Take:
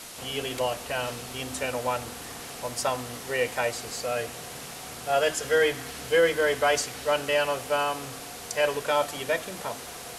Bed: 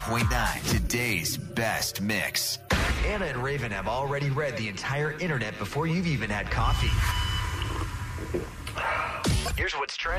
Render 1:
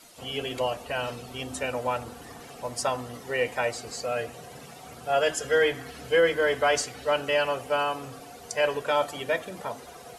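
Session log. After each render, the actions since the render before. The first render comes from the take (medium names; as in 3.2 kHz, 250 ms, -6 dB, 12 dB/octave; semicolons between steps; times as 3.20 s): noise reduction 12 dB, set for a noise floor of -40 dBFS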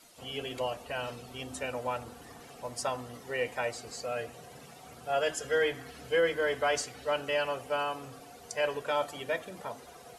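trim -5.5 dB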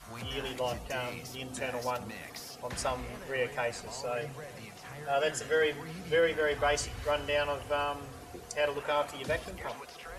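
add bed -17.5 dB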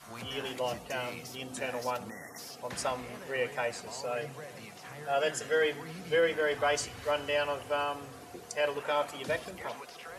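2.09–2.39 s: spectral selection erased 2.1–5.3 kHz; high-pass 130 Hz 12 dB/octave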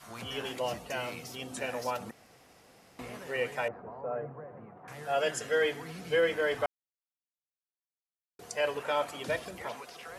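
2.11–2.99 s: room tone; 3.68–4.88 s: low-pass 1.3 kHz 24 dB/octave; 6.66–8.39 s: mute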